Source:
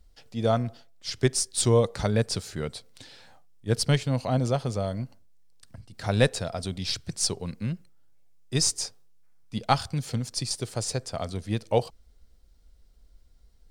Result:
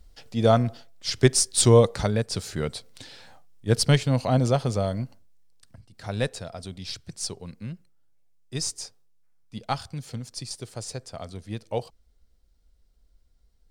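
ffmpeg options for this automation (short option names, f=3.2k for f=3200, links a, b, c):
-af "volume=12.5dB,afade=t=out:st=1.82:d=0.46:silence=0.354813,afade=t=in:st=2.28:d=0.15:silence=0.421697,afade=t=out:st=4.79:d=1.11:silence=0.354813"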